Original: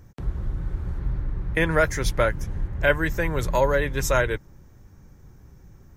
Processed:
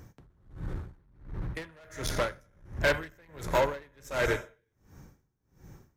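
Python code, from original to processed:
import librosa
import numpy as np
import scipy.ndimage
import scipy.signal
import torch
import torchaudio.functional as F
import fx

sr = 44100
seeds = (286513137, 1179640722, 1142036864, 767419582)

y = fx.rev_gated(x, sr, seeds[0], gate_ms=410, shape='falling', drr_db=9.5)
y = 10.0 ** (-22.0 / 20.0) * np.tanh(y / 10.0 ** (-22.0 / 20.0))
y = fx.low_shelf(y, sr, hz=78.0, db=-11.5)
y = y * 10.0 ** (-32 * (0.5 - 0.5 * np.cos(2.0 * np.pi * 1.4 * np.arange(len(y)) / sr)) / 20.0)
y = y * librosa.db_to_amplitude(3.5)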